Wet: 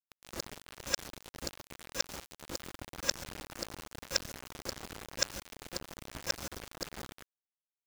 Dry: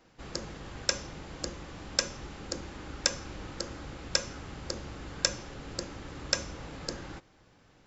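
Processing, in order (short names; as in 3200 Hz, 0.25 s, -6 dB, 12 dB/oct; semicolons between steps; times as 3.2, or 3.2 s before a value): local time reversal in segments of 0.108 s; bit-crush 6-bit; gain -3.5 dB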